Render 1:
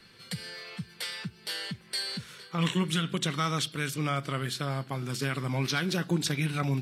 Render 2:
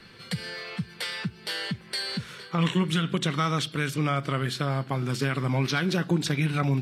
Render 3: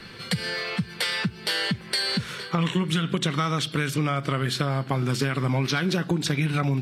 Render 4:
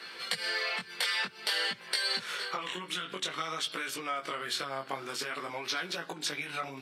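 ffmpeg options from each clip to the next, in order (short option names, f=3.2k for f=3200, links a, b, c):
-af "acompressor=threshold=-34dB:ratio=1.5,highshelf=f=4.5k:g=-9,volume=7.5dB"
-af "acompressor=threshold=-29dB:ratio=4,volume=7.5dB"
-af "acompressor=threshold=-26dB:ratio=6,highpass=550,flanger=delay=17:depth=5.4:speed=0.52,volume=2.5dB"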